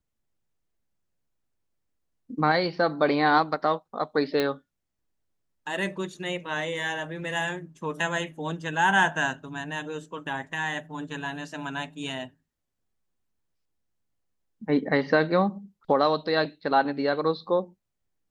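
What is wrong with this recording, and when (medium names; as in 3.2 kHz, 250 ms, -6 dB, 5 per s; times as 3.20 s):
4.40 s: pop -13 dBFS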